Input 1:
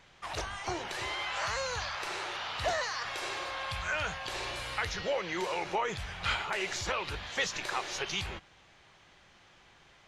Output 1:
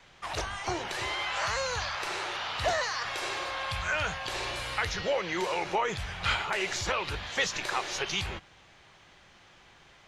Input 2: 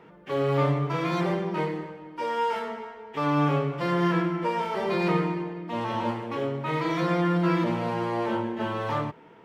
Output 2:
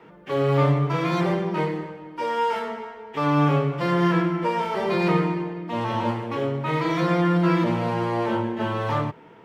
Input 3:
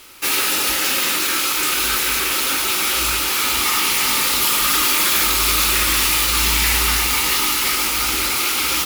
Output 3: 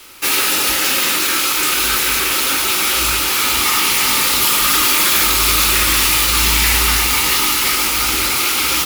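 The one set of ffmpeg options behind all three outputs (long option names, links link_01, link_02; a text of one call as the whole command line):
ffmpeg -i in.wav -af "adynamicequalizer=threshold=0.00794:dfrequency=110:dqfactor=1.8:tfrequency=110:tqfactor=1.8:attack=5:release=100:ratio=0.375:range=2:mode=boostabove:tftype=bell,volume=3dB" out.wav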